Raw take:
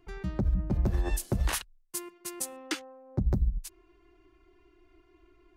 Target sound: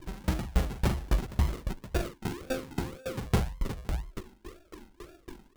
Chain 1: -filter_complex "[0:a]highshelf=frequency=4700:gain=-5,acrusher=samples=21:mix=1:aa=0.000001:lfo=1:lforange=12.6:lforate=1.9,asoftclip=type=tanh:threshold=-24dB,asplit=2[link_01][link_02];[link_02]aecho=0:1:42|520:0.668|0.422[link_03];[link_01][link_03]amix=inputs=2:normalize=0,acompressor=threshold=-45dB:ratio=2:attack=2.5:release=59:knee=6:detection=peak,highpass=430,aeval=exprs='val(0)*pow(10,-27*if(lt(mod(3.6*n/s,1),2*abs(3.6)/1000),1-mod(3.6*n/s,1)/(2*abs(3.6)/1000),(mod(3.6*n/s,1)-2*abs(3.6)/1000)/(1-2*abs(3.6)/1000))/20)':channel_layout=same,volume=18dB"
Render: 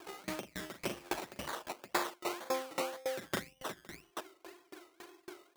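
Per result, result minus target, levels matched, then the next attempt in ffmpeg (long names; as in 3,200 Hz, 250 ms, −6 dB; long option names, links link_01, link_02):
500 Hz band +4.5 dB; sample-and-hold swept by an LFO: distortion −6 dB
-filter_complex "[0:a]highshelf=frequency=4700:gain=-5,acrusher=samples=21:mix=1:aa=0.000001:lfo=1:lforange=12.6:lforate=1.9,asoftclip=type=tanh:threshold=-24dB,asplit=2[link_01][link_02];[link_02]aecho=0:1:42|520:0.668|0.422[link_03];[link_01][link_03]amix=inputs=2:normalize=0,acompressor=threshold=-45dB:ratio=2:attack=2.5:release=59:knee=6:detection=peak,aeval=exprs='val(0)*pow(10,-27*if(lt(mod(3.6*n/s,1),2*abs(3.6)/1000),1-mod(3.6*n/s,1)/(2*abs(3.6)/1000),(mod(3.6*n/s,1)-2*abs(3.6)/1000)/(1-2*abs(3.6)/1000))/20)':channel_layout=same,volume=18dB"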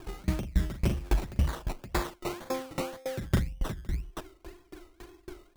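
sample-and-hold swept by an LFO: distortion −6 dB
-filter_complex "[0:a]highshelf=frequency=4700:gain=-5,acrusher=samples=60:mix=1:aa=0.000001:lfo=1:lforange=36:lforate=1.9,asoftclip=type=tanh:threshold=-24dB,asplit=2[link_01][link_02];[link_02]aecho=0:1:42|520:0.668|0.422[link_03];[link_01][link_03]amix=inputs=2:normalize=0,acompressor=threshold=-45dB:ratio=2:attack=2.5:release=59:knee=6:detection=peak,aeval=exprs='val(0)*pow(10,-27*if(lt(mod(3.6*n/s,1),2*abs(3.6)/1000),1-mod(3.6*n/s,1)/(2*abs(3.6)/1000),(mod(3.6*n/s,1)-2*abs(3.6)/1000)/(1-2*abs(3.6)/1000))/20)':channel_layout=same,volume=18dB"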